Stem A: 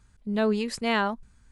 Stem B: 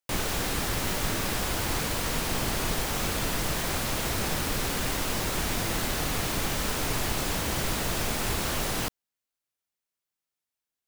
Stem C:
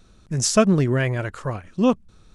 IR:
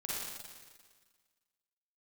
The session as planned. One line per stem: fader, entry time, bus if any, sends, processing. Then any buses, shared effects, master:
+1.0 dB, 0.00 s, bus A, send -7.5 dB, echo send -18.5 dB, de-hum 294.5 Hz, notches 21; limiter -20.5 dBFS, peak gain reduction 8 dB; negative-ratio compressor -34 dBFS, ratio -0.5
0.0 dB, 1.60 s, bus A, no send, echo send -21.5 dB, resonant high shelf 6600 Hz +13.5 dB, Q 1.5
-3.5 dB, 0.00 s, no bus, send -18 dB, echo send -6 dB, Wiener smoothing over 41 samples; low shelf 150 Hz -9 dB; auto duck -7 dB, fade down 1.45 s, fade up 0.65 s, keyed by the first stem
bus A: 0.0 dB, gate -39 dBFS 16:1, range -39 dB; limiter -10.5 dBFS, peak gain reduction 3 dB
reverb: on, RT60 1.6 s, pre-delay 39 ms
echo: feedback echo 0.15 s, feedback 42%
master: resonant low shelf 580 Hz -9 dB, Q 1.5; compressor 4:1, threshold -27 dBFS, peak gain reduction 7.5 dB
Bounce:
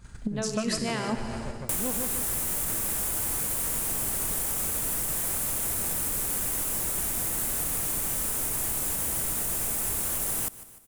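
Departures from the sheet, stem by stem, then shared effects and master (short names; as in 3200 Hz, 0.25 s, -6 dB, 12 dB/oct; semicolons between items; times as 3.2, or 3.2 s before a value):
stem A +1.0 dB -> +11.0 dB; master: missing resonant low shelf 580 Hz -9 dB, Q 1.5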